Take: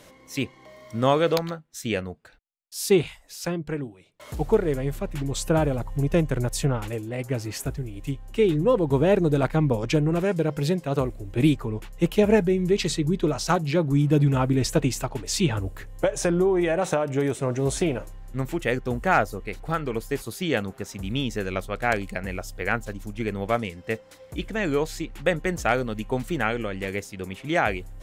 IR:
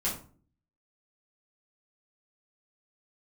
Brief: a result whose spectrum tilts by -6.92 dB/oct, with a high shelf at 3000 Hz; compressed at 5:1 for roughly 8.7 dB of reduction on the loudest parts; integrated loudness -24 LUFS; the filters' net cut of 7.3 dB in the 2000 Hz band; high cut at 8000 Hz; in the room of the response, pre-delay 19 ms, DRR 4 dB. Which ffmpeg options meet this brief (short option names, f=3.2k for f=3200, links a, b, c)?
-filter_complex "[0:a]lowpass=8k,equalizer=f=2k:t=o:g=-8.5,highshelf=f=3k:g=-4,acompressor=threshold=-24dB:ratio=5,asplit=2[a][b];[1:a]atrim=start_sample=2205,adelay=19[c];[b][c]afir=irnorm=-1:irlink=0,volume=-10dB[d];[a][d]amix=inputs=2:normalize=0,volume=4dB"